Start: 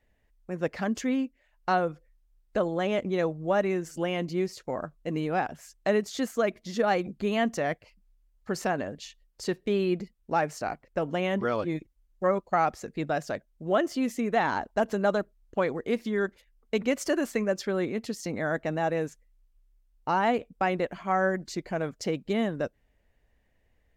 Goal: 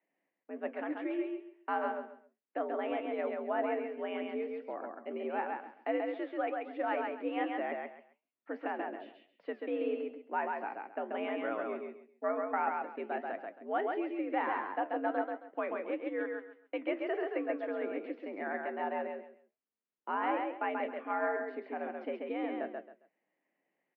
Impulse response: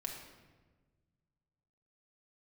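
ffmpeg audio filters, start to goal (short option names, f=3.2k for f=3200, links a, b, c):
-filter_complex "[0:a]flanger=delay=7.9:depth=8.5:regen=71:speed=1.5:shape=triangular,asplit=2[a][b];[b]aecho=0:1:135|270|405:0.668|0.16|0.0385[c];[a][c]amix=inputs=2:normalize=0,highpass=f=150:t=q:w=0.5412,highpass=f=150:t=q:w=1.307,lowpass=f=2.7k:t=q:w=0.5176,lowpass=f=2.7k:t=q:w=0.7071,lowpass=f=2.7k:t=q:w=1.932,afreqshift=78,volume=-4.5dB"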